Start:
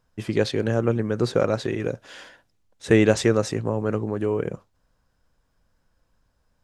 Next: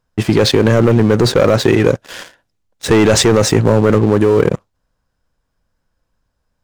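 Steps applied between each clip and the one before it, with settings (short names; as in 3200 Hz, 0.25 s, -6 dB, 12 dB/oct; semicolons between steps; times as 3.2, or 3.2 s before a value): sample leveller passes 3; in parallel at -2 dB: negative-ratio compressor -15 dBFS, ratio -0.5; on the sum: gain -1 dB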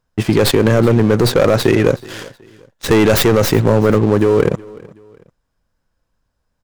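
tracing distortion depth 0.15 ms; feedback echo 0.372 s, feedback 35%, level -22 dB; gain -1 dB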